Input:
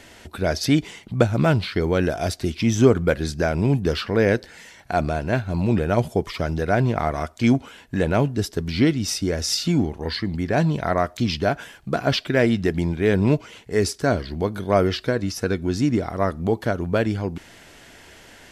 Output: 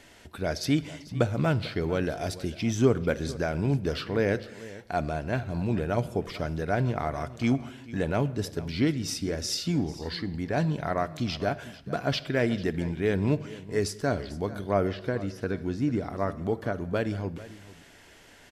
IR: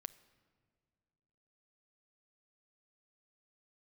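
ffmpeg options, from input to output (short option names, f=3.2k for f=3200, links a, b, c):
-filter_complex "[0:a]aecho=1:1:444:0.133[a];[1:a]atrim=start_sample=2205,afade=t=out:st=0.37:d=0.01,atrim=end_sample=16758[b];[a][b]afir=irnorm=-1:irlink=0,asettb=1/sr,asplit=3[c][d][e];[c]atrim=end=14.694[f];[d]atrim=start=14.69:end=16.87,asetpts=PTS-STARTPTS,afade=t=in:d=0.004:c=qsin,afade=t=out:st=2.176:d=0.004:c=qsin,acrossover=split=2500[g][h];[h]acompressor=threshold=-48dB:ratio=4:attack=1:release=60[i];[g][i]amix=inputs=2:normalize=0[j];[e]atrim=start=16.866[k];[f][j]acrossfade=d=0.004:c1=hsin:c2=qsin[l];[l][k]acrossfade=d=0.004:c1=qsin:c2=hsin,volume=-2.5dB"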